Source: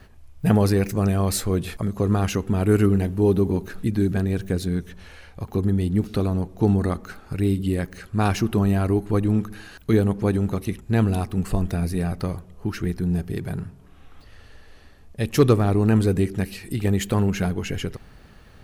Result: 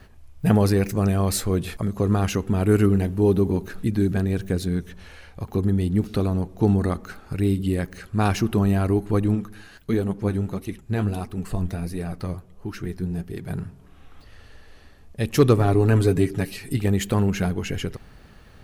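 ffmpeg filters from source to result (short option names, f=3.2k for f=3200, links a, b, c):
-filter_complex "[0:a]asplit=3[a][b][c];[a]afade=t=out:st=9.34:d=0.02[d];[b]flanger=delay=2.2:depth=9.6:regen=52:speed=1.5:shape=triangular,afade=t=in:st=9.34:d=0.02,afade=t=out:st=13.48:d=0.02[e];[c]afade=t=in:st=13.48:d=0.02[f];[d][e][f]amix=inputs=3:normalize=0,asettb=1/sr,asplit=3[g][h][i];[g]atrim=end=15.584[j];[h]atrim=start=15.58:end=16.77,asetpts=PTS-STARTPTS,afade=t=in:d=0.004:c=qsin,afade=t=out:st=1.186:d=0.004:c=qsin,aecho=1:1:7.2:0.65,atrim=end_sample=52479[k];[i]atrim=start=16.766[l];[j][k]acrossfade=d=0.004:c1=hsin:c2=qsin[m];[m][l]acrossfade=d=0.004:c1=qsin:c2=hsin"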